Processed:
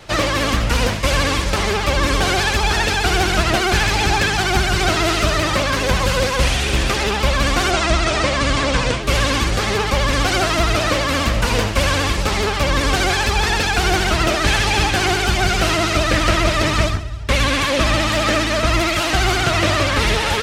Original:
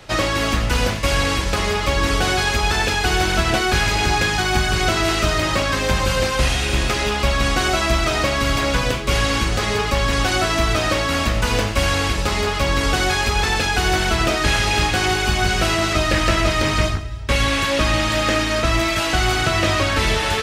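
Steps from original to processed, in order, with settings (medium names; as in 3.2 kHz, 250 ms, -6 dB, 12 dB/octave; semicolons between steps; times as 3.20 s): vibrato 15 Hz 93 cents; 7.71–9.03 s: steep low-pass 9.5 kHz 48 dB/octave; trim +1.5 dB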